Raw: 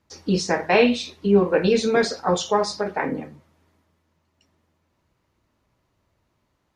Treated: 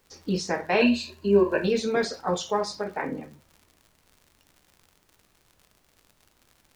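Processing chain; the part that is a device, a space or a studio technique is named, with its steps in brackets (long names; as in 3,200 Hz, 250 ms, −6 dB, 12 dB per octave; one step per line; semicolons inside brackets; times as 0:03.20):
0:00.81–0:01.64: EQ curve with evenly spaced ripples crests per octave 1.4, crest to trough 15 dB
vinyl LP (surface crackle 86 per second −36 dBFS; pink noise bed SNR 38 dB)
level −5.5 dB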